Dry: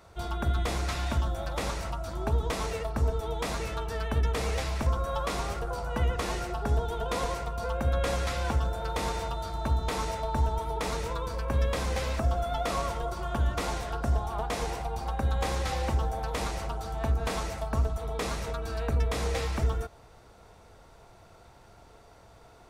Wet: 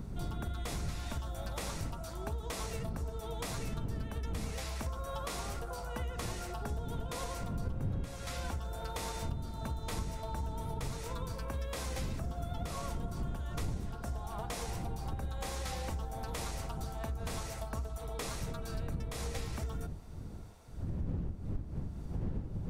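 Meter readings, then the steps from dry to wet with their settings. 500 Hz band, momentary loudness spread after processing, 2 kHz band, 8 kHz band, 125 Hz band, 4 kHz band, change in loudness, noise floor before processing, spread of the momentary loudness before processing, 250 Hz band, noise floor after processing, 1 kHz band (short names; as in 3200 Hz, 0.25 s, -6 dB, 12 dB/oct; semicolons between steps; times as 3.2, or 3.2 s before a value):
-10.5 dB, 2 LU, -9.5 dB, -3.5 dB, -7.0 dB, -7.0 dB, -8.5 dB, -54 dBFS, 5 LU, -5.0 dB, -44 dBFS, -10.5 dB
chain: wind noise 120 Hz -24 dBFS; high shelf 5500 Hz +10.5 dB; compressor 5:1, threshold -27 dBFS, peak gain reduction 18 dB; gain -7 dB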